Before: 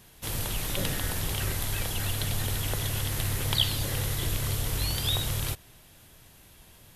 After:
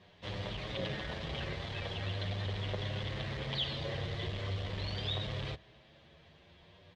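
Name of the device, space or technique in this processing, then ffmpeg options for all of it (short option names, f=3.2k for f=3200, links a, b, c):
barber-pole flanger into a guitar amplifier: -filter_complex "[0:a]asplit=2[a][b];[b]adelay=8,afreqshift=0.43[c];[a][c]amix=inputs=2:normalize=1,asoftclip=type=tanh:threshold=-28.5dB,highpass=86,equalizer=f=120:t=q:w=4:g=-6,equalizer=f=270:t=q:w=4:g=-7,equalizer=f=580:t=q:w=4:g=4,equalizer=f=870:t=q:w=4:g=-4,equalizer=f=1.4k:t=q:w=4:g=-7,equalizer=f=2.6k:t=q:w=4:g=-4,lowpass=f=3.7k:w=0.5412,lowpass=f=3.7k:w=1.3066,volume=2.5dB"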